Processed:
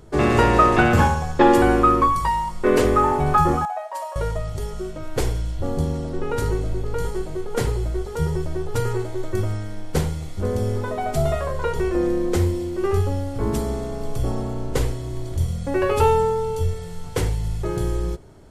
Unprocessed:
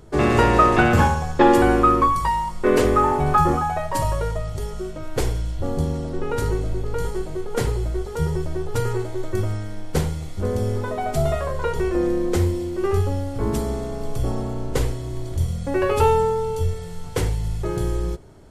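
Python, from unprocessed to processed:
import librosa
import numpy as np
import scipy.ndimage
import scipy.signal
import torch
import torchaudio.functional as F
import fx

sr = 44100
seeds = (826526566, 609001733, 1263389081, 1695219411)

y = fx.ladder_highpass(x, sr, hz=610.0, resonance_pct=55, at=(3.65, 4.16))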